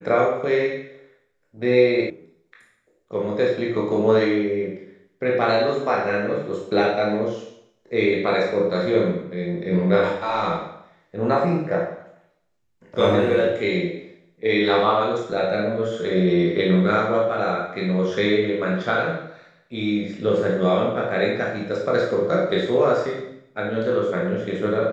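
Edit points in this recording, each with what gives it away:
0:02.10: cut off before it has died away

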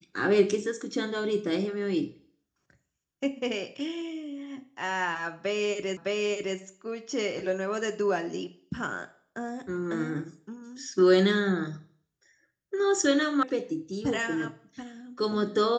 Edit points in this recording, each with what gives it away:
0:05.97: the same again, the last 0.61 s
0:13.43: cut off before it has died away

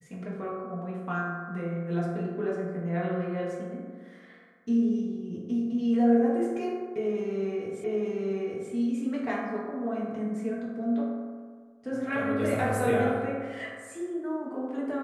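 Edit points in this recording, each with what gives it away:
0:07.84: the same again, the last 0.88 s

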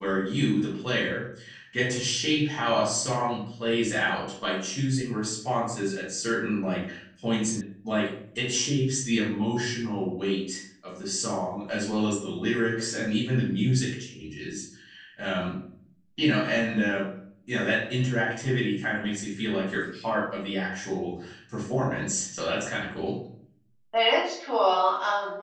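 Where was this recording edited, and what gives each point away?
0:07.61: cut off before it has died away

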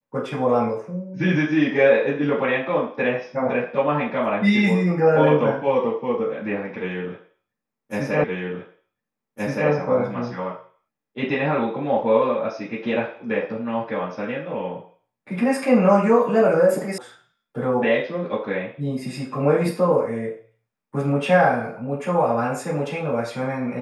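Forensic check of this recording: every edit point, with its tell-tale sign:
0:08.24: the same again, the last 1.47 s
0:16.98: cut off before it has died away

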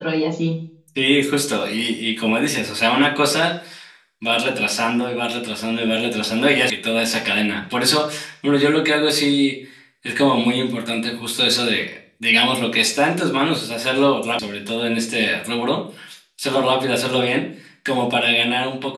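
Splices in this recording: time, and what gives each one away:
0:06.70: cut off before it has died away
0:14.39: cut off before it has died away

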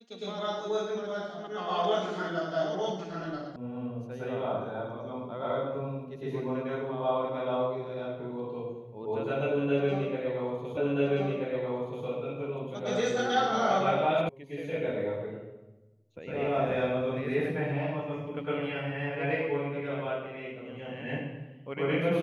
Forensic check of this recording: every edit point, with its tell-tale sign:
0:03.56: cut off before it has died away
0:10.77: the same again, the last 1.28 s
0:14.29: cut off before it has died away

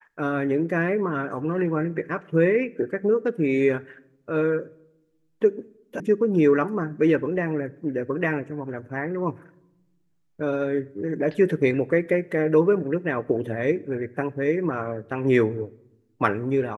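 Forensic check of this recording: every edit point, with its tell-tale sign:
0:06.00: cut off before it has died away

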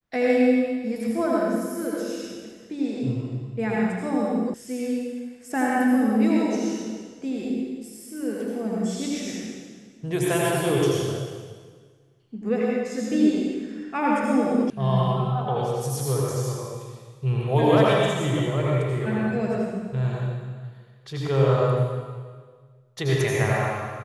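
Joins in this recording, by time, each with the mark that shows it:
0:04.54: cut off before it has died away
0:14.70: cut off before it has died away

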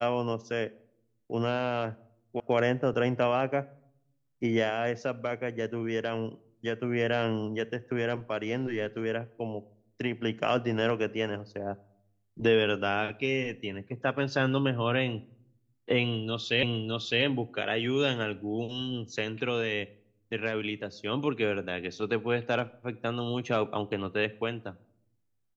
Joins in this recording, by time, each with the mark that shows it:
0:02.40: cut off before it has died away
0:16.63: the same again, the last 0.61 s

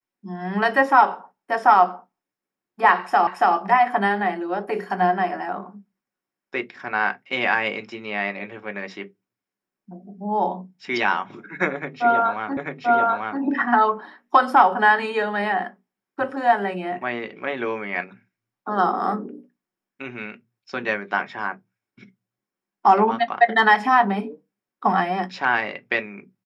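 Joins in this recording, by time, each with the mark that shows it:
0:03.27: the same again, the last 0.28 s
0:12.57: the same again, the last 0.84 s

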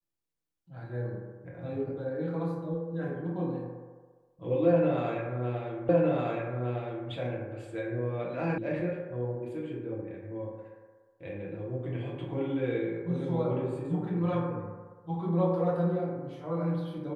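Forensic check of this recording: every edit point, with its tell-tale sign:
0:05.89: the same again, the last 1.21 s
0:08.58: cut off before it has died away

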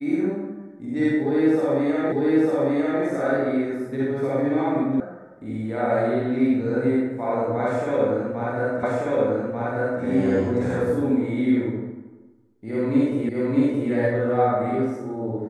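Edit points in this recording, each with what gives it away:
0:02.12: the same again, the last 0.9 s
0:05.00: cut off before it has died away
0:08.83: the same again, the last 1.19 s
0:13.29: the same again, the last 0.62 s

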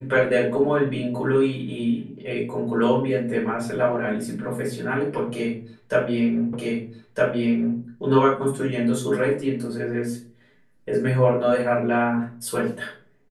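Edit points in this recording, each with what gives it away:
0:06.53: the same again, the last 1.26 s

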